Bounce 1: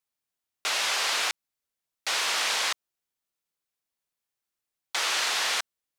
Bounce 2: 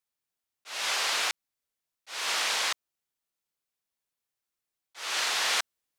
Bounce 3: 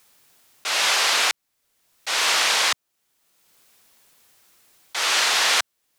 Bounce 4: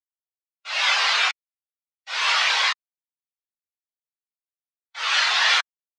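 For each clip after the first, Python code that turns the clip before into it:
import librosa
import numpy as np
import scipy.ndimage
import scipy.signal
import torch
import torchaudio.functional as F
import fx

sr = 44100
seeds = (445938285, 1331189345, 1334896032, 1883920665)

y1 = fx.rider(x, sr, range_db=10, speed_s=0.5)
y1 = fx.auto_swell(y1, sr, attack_ms=249.0)
y2 = fx.band_squash(y1, sr, depth_pct=70)
y2 = F.gain(torch.from_numpy(y2), 8.5).numpy()
y3 = fx.spectral_expand(y2, sr, expansion=2.5)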